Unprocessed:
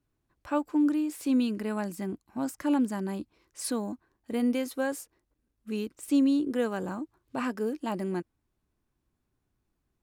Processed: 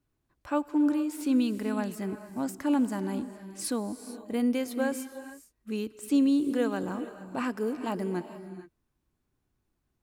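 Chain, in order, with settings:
reverb whose tail is shaped and stops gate 480 ms rising, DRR 11 dB

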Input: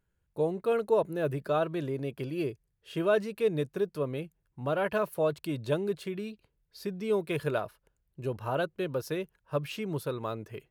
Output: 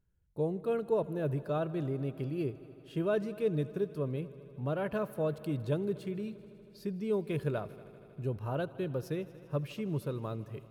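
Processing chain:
low-shelf EQ 340 Hz +12 dB
echo machine with several playback heads 79 ms, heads all three, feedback 72%, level −24 dB
level −8.5 dB

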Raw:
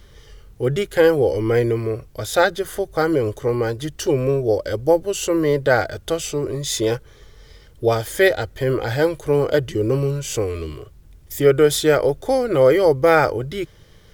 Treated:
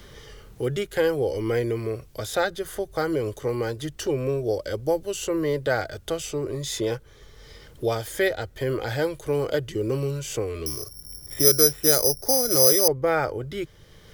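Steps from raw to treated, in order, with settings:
0:10.66–0:12.88: bad sample-rate conversion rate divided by 8×, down filtered, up zero stuff
multiband upward and downward compressor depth 40%
level −7 dB

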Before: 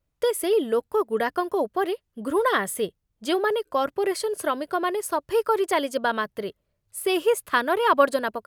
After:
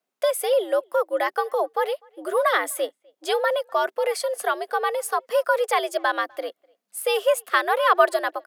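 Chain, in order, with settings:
high-pass filter 280 Hz 12 dB per octave
frequency shifter +100 Hz
far-end echo of a speakerphone 250 ms, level −29 dB
level +1.5 dB

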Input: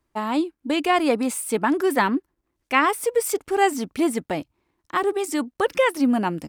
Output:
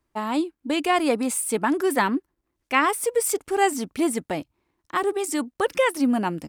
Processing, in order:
dynamic equaliser 9,300 Hz, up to +5 dB, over −46 dBFS, Q 0.92
level −1.5 dB

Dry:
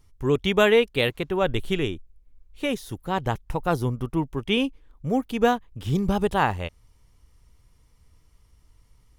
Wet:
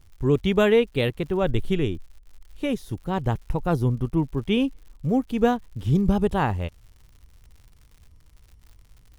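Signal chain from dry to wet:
low-shelf EQ 450 Hz +10 dB
surface crackle 120 per second −38 dBFS
level −5 dB

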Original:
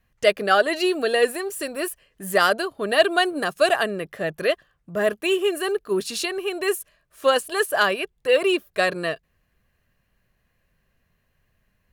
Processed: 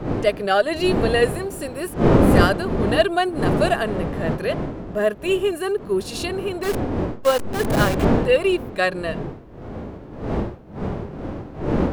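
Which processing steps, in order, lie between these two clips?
0:06.63–0:08.18: hold until the input has moved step −19 dBFS
wind on the microphone 380 Hz −22 dBFS
harmonic and percussive parts rebalanced harmonic +8 dB
level −6 dB

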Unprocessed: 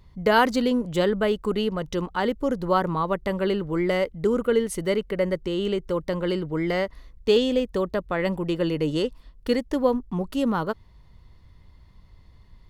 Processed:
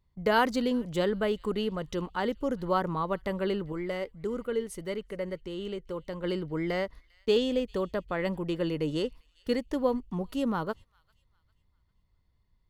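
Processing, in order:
noise gate −38 dBFS, range −14 dB
0:03.72–0:06.24: flanger 1.6 Hz, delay 0.5 ms, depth 2.2 ms, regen +85%
delay with a high-pass on its return 399 ms, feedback 36%, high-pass 2,300 Hz, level −23 dB
level −5.5 dB

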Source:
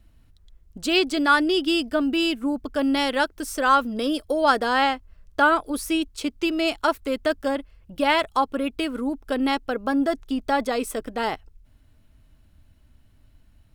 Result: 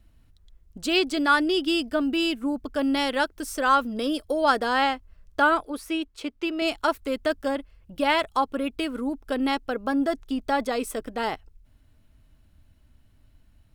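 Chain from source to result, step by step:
0:05.65–0:06.62: bass and treble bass −9 dB, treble −9 dB
level −2 dB

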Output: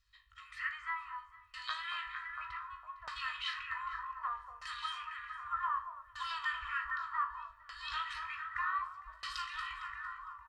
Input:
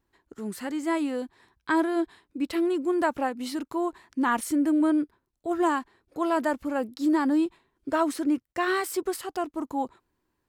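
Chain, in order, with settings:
brick-wall band-stop 100–910 Hz
soft clipping −18.5 dBFS, distortion −20 dB
guitar amp tone stack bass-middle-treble 10-0-10
downward compressor 6 to 1, threshold −41 dBFS, peak gain reduction 10.5 dB
high-shelf EQ 5,600 Hz −6.5 dB
tuned comb filter 52 Hz, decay 0.44 s, harmonics all, mix 80%
delay that swaps between a low-pass and a high-pass 228 ms, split 1,300 Hz, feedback 81%, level −4.5 dB
auto-filter low-pass saw down 0.65 Hz 570–5,100 Hz
comb filter 1.6 ms, depth 63%
level +11.5 dB
SBC 192 kbit/s 44,100 Hz

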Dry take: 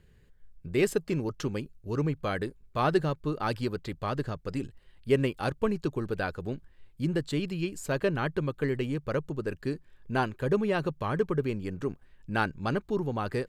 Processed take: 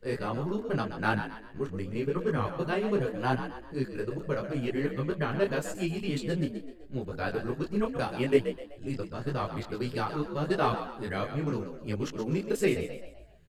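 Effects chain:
played backwards from end to start
echo with shifted repeats 127 ms, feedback 42%, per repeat +53 Hz, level −9.5 dB
micro pitch shift up and down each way 29 cents
level +2.5 dB

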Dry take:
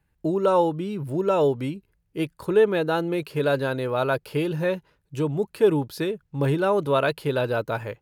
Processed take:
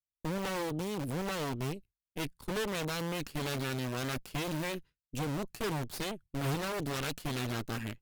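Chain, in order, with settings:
downward expander −38 dBFS
guitar amp tone stack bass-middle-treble 6-0-2
in parallel at −11 dB: wrap-around overflow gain 43.5 dB
on the sum: harmonic generator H 8 −8 dB, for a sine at −31.5 dBFS
level +6 dB

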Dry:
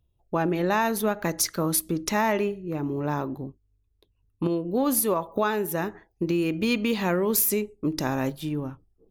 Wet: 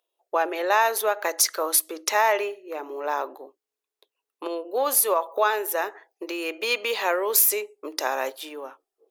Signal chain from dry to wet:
inverse Chebyshev high-pass filter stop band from 180 Hz, stop band 50 dB
level +4.5 dB

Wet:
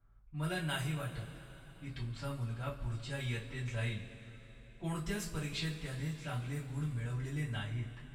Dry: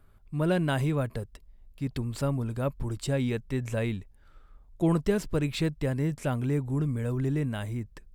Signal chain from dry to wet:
low-pass that shuts in the quiet parts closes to 1,100 Hz, open at −22.5 dBFS
speech leveller within 5 dB 2 s
guitar amp tone stack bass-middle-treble 5-5-5
coupled-rooms reverb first 0.24 s, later 4.1 s, from −22 dB, DRR −8.5 dB
level −3 dB

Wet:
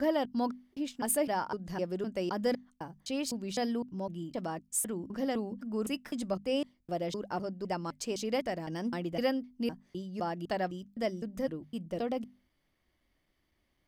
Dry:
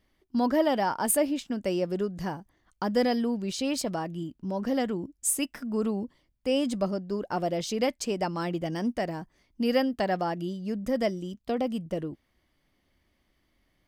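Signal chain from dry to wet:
slices reordered back to front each 255 ms, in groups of 3
mains-hum notches 50/100/150/200/250 Hz
level −5 dB

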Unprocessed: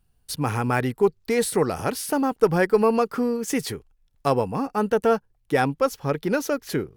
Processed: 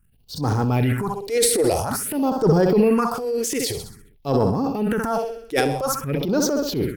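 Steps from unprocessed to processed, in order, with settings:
repeating echo 65 ms, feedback 52%, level −11.5 dB
all-pass phaser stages 4, 0.5 Hz, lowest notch 160–2,400 Hz
transient designer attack −9 dB, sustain +8 dB
level +4 dB

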